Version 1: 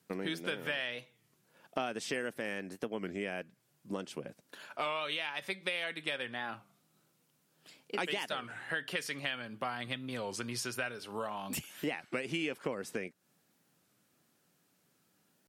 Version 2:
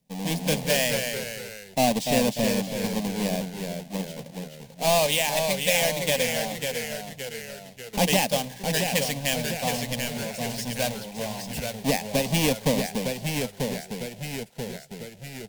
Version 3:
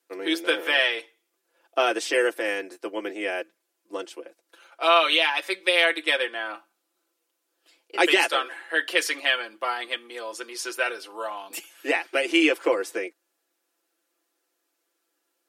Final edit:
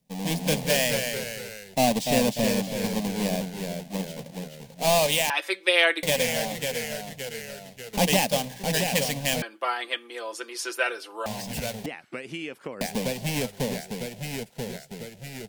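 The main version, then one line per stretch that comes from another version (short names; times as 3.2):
2
5.3–6.03 from 3
9.42–11.26 from 3
11.86–12.81 from 1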